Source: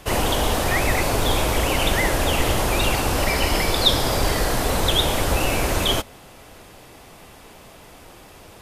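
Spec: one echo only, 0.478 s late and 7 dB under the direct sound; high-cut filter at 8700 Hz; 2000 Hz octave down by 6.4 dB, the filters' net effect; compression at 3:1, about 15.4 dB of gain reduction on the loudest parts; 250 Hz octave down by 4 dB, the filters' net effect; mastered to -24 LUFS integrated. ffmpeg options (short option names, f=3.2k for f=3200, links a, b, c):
-af "lowpass=8.7k,equalizer=f=250:t=o:g=-5.5,equalizer=f=2k:t=o:g=-8,acompressor=threshold=-38dB:ratio=3,aecho=1:1:478:0.447,volume=13.5dB"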